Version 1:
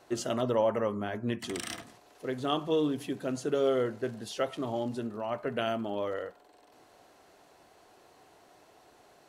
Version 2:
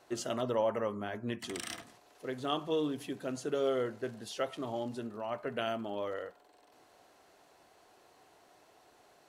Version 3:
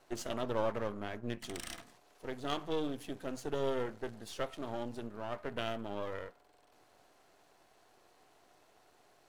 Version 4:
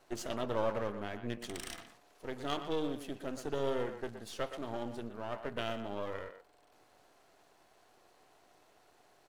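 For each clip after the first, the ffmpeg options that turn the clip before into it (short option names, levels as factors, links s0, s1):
-af "lowshelf=f=430:g=-3.5,volume=0.75"
-af "aeval=exprs='if(lt(val(0),0),0.251*val(0),val(0))':c=same"
-filter_complex "[0:a]asplit=2[s0][s1];[s1]adelay=120,highpass=300,lowpass=3400,asoftclip=type=hard:threshold=0.0447,volume=0.355[s2];[s0][s2]amix=inputs=2:normalize=0"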